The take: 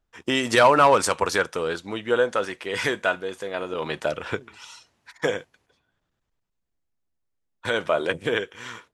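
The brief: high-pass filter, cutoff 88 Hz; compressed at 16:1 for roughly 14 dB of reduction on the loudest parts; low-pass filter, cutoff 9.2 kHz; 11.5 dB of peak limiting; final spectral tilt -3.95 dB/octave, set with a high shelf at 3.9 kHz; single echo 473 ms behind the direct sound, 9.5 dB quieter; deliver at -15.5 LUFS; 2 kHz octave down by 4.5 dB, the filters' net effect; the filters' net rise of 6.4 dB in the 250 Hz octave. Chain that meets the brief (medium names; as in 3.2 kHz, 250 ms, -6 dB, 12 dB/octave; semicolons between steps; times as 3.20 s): high-pass 88 Hz; low-pass 9.2 kHz; peaking EQ 250 Hz +8 dB; peaking EQ 2 kHz -5 dB; treble shelf 3.9 kHz -6.5 dB; compression 16:1, threshold -25 dBFS; peak limiter -25.5 dBFS; delay 473 ms -9.5 dB; trim +20.5 dB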